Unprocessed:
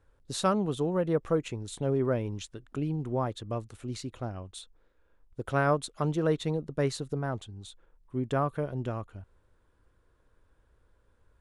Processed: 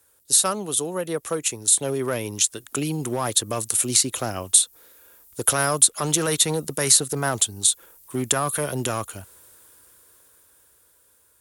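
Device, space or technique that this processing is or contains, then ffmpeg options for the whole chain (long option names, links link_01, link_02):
FM broadcast chain: -filter_complex "[0:a]highpass=76,dynaudnorm=framelen=450:gausssize=11:maxgain=15.5dB,acrossover=split=190|940|2000|4000[link_01][link_02][link_03][link_04][link_05];[link_01]acompressor=threshold=-22dB:ratio=4[link_06];[link_02]acompressor=threshold=-24dB:ratio=4[link_07];[link_03]acompressor=threshold=-26dB:ratio=4[link_08];[link_04]acompressor=threshold=-45dB:ratio=4[link_09];[link_05]acompressor=threshold=-40dB:ratio=4[link_10];[link_06][link_07][link_08][link_09][link_10]amix=inputs=5:normalize=0,aemphasis=mode=production:type=75fm,alimiter=limit=-15dB:level=0:latency=1:release=14,asoftclip=type=hard:threshold=-16.5dB,lowpass=frequency=15000:width=0.5412,lowpass=frequency=15000:width=1.3066,bass=frequency=250:gain=-8,treble=frequency=4000:gain=-1,aemphasis=mode=production:type=75fm,volume=3dB"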